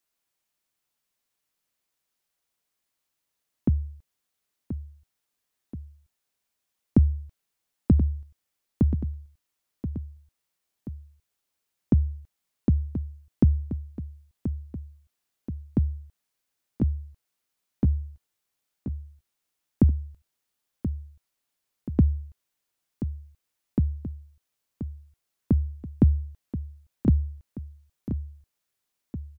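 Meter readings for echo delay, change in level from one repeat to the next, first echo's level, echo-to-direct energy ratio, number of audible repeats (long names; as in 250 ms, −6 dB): 1,030 ms, −5.0 dB, −10.5 dB, −9.5 dB, 2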